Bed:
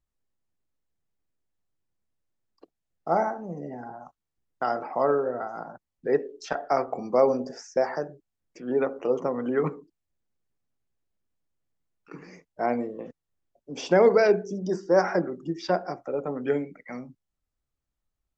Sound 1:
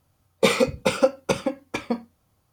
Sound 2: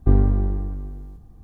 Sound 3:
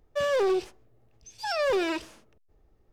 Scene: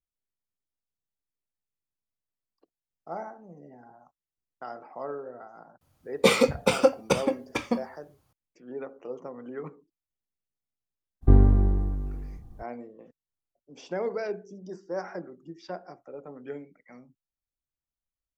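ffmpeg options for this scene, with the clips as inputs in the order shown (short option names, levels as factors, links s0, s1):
-filter_complex "[0:a]volume=0.237[s0];[1:a]atrim=end=2.52,asetpts=PTS-STARTPTS,volume=0.891,afade=t=in:d=0.004:c=hsin,afade=t=out:st=2.516:d=0.004:c=hsin,adelay=256221S[s1];[2:a]atrim=end=1.43,asetpts=PTS-STARTPTS,volume=0.944,afade=t=in:d=0.02,afade=t=out:st=1.41:d=0.02,adelay=11210[s2];[s0][s1][s2]amix=inputs=3:normalize=0"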